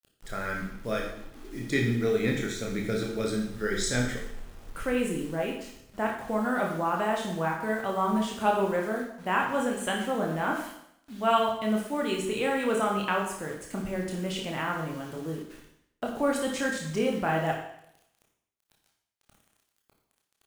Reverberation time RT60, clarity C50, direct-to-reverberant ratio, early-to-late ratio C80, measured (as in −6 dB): 0.75 s, 5.0 dB, −1.0 dB, 7.5 dB